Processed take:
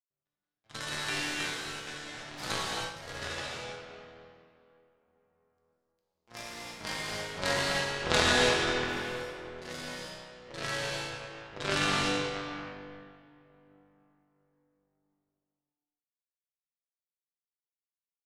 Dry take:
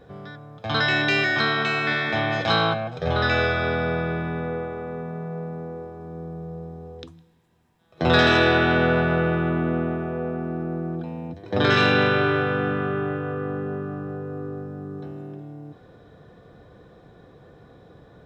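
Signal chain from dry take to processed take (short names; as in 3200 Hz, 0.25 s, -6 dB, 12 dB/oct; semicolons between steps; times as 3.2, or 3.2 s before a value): elliptic low-pass 5500 Hz; high shelf 2300 Hz +4 dB; notch 680 Hz, Q 17; power-law curve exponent 3; echoes that change speed 0.204 s, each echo +2 st, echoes 3, each echo -6 dB; non-linear reverb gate 0.35 s flat, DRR -4 dB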